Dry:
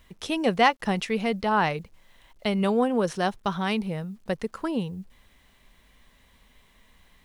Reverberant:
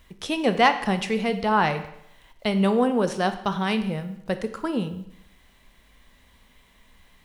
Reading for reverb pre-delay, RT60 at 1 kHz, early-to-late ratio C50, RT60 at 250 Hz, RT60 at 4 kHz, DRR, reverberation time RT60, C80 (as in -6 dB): 21 ms, 0.75 s, 12.0 dB, 0.75 s, 0.70 s, 9.0 dB, 0.75 s, 14.0 dB